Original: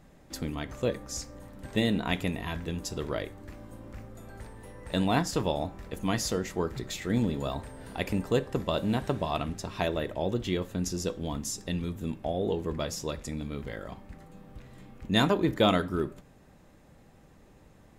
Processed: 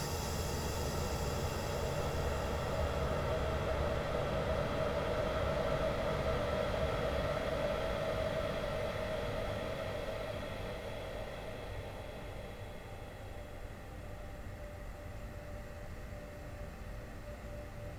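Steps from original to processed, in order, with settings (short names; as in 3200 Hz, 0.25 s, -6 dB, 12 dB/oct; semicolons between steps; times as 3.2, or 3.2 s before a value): minimum comb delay 1.5 ms; Paulstretch 30×, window 0.50 s, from 2.96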